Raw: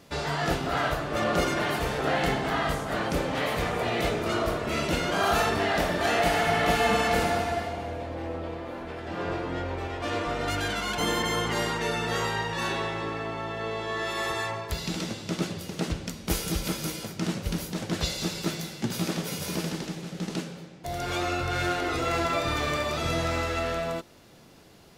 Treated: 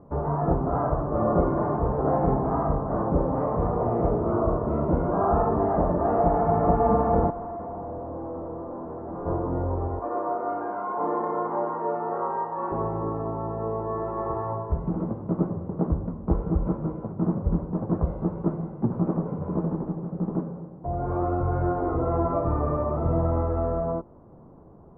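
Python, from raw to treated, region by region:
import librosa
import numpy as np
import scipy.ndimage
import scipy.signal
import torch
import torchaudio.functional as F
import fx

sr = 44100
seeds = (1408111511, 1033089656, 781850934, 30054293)

y = fx.chain(x, sr, fx.highpass(hz=130.0, slope=12),
    fx.clip_hard(threshold_db=-35.0), at=(7.3, 9.26))
y = fx.chain(y, sr, fx.bandpass_edges(low_hz=450.0, high_hz=3200.0),
    fx.doubler(ms=31.0, db=-3.0), at=(9.99, 12.72))
y = scipy.signal.sosfilt(scipy.signal.cheby1(4, 1.0, 1100.0, 'lowpass', fs=sr, output='sos'), y)
y = fx.low_shelf(y, sr, hz=130.0, db=7.5)
y = fx.hum_notches(y, sr, base_hz=50, count=2)
y = F.gain(torch.from_numpy(y), 3.5).numpy()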